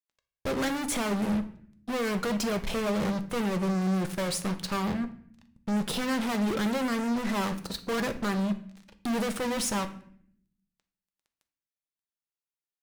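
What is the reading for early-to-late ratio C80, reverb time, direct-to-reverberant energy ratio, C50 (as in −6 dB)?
17.0 dB, 0.60 s, 8.0 dB, 13.5 dB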